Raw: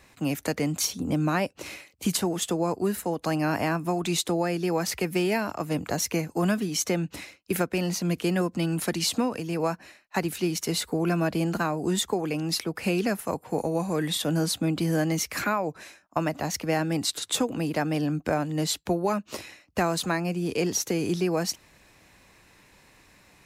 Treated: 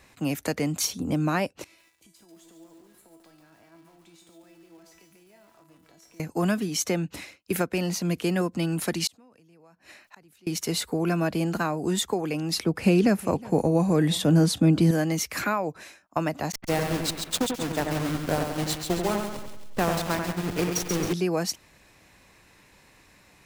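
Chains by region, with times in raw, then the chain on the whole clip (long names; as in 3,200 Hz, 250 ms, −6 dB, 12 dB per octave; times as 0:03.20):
0:01.64–0:06.20: downward compressor 8 to 1, threshold −37 dBFS + tuned comb filter 330 Hz, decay 0.6 s, mix 90% + feedback echo at a low word length 142 ms, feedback 55%, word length 10 bits, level −4 dB
0:09.07–0:10.47: gate with flip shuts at −33 dBFS, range −38 dB + envelope flattener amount 50%
0:12.55–0:14.91: low-pass filter 12,000 Hz + low-shelf EQ 430 Hz +9 dB + single-tap delay 364 ms −21.5 dB
0:16.52–0:21.13: hold until the input has moved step −24.5 dBFS + downward expander −26 dBFS + echo with a time of its own for lows and highs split 2,500 Hz, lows 91 ms, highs 135 ms, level −5 dB
whole clip: no processing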